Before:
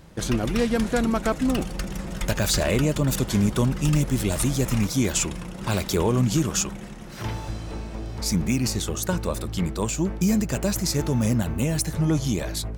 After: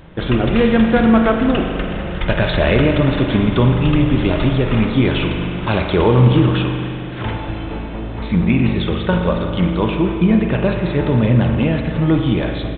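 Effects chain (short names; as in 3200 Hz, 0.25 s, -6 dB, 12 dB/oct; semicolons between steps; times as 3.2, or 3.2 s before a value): notches 50/100/150/200/250 Hz; downsampling 8000 Hz; spring tank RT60 2.4 s, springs 40 ms, chirp 20 ms, DRR 3 dB; gain +8 dB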